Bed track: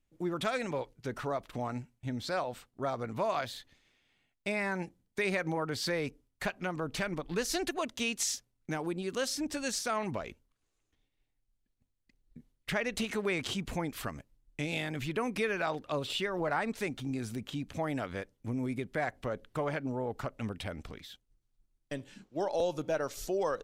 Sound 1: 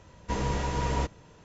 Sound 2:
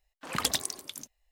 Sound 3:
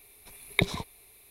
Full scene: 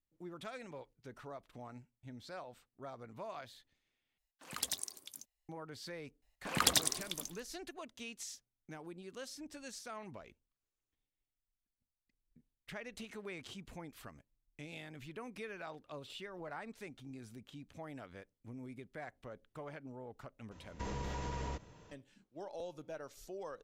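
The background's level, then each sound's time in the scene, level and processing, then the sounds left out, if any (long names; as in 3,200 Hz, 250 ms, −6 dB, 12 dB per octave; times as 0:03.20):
bed track −14 dB
0:04.18: overwrite with 2 −15.5 dB + high-shelf EQ 3,500 Hz +9 dB
0:06.22: mix in 2 −1 dB + repeating echo 98 ms, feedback 38%, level −14 dB
0:20.51: mix in 1 −5 dB + downward compressor, threshold −31 dBFS
not used: 3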